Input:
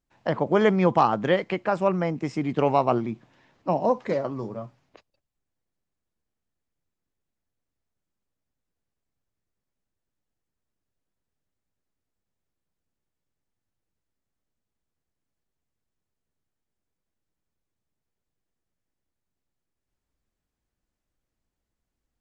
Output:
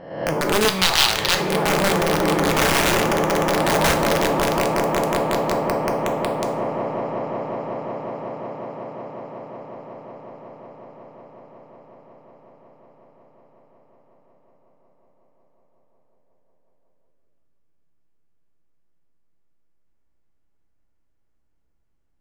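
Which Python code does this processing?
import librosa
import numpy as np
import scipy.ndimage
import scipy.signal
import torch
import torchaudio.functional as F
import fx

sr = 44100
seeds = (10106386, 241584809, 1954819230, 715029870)

y = fx.spec_swells(x, sr, rise_s=0.78)
y = fx.high_shelf(y, sr, hz=3000.0, db=-10.5)
y = fx.notch(y, sr, hz=3600.0, q=23.0)
y = fx.echo_swell(y, sr, ms=183, loudest=8, wet_db=-9)
y = (np.mod(10.0 ** (11.5 / 20.0) * y + 1.0, 2.0) - 1.0) / 10.0 ** (11.5 / 20.0)
y = fx.graphic_eq(y, sr, hz=(250, 500, 4000), db=(-10, -6, 11), at=(0.68, 1.4))
y = fx.rev_double_slope(y, sr, seeds[0], early_s=0.51, late_s=1.8, knee_db=-18, drr_db=5.5)
y = F.gain(torch.from_numpy(y), -1.0).numpy()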